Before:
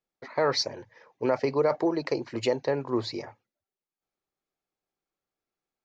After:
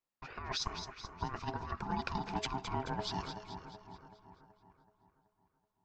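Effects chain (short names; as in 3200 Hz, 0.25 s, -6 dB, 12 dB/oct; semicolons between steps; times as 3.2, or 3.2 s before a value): negative-ratio compressor -28 dBFS, ratio -0.5; ring modulator 530 Hz; split-band echo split 1700 Hz, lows 0.378 s, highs 0.216 s, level -8.5 dB; gain -5 dB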